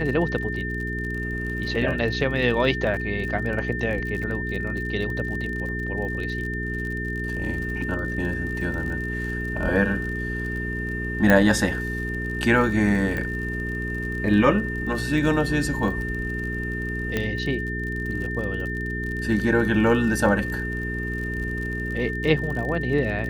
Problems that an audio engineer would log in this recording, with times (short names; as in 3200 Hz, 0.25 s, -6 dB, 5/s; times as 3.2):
crackle 43/s -31 dBFS
hum 60 Hz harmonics 7 -30 dBFS
tone 1800 Hz -30 dBFS
11.3 pop -6 dBFS
13.17 pop -17 dBFS
17.17 pop -11 dBFS